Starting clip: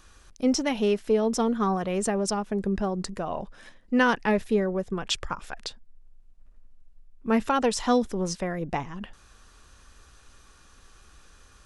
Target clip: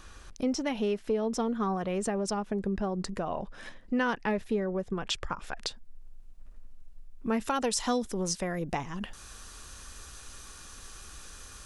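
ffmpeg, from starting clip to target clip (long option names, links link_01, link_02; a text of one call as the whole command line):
ffmpeg -i in.wav -af "asetnsamples=nb_out_samples=441:pad=0,asendcmd='5.62 highshelf g 3.5;7.41 highshelf g 11',highshelf=frequency=5200:gain=-4.5,acompressor=threshold=-40dB:ratio=2,volume=5dB" out.wav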